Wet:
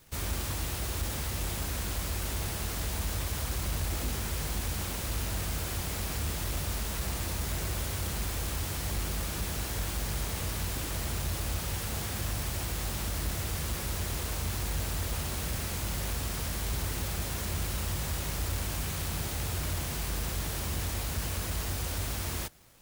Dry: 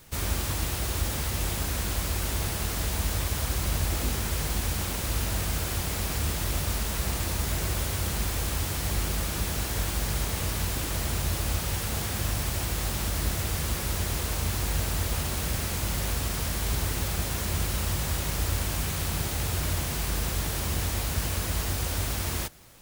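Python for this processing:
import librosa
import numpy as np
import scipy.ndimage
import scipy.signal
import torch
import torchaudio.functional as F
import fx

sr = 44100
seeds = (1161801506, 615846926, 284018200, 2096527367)

y = fx.leveller(x, sr, passes=1)
y = y * 10.0 ** (-7.5 / 20.0)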